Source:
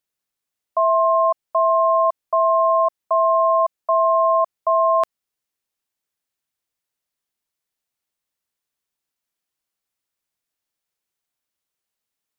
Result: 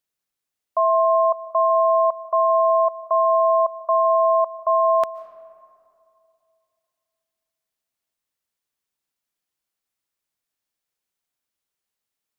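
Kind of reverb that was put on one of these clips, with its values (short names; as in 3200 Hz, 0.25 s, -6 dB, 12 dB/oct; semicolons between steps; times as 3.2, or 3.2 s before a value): digital reverb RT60 2.6 s, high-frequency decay 0.4×, pre-delay 0.1 s, DRR 15.5 dB; gain -1 dB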